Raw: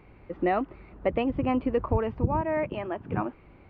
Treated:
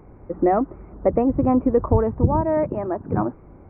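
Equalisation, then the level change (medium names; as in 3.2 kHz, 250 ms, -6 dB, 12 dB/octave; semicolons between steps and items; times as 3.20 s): Gaussian low-pass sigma 6.4 samples; hum notches 60/120/180 Hz; +8.5 dB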